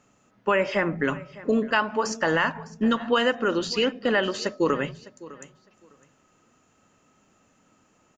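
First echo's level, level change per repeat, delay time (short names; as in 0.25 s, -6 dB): -19.0 dB, -14.5 dB, 0.606 s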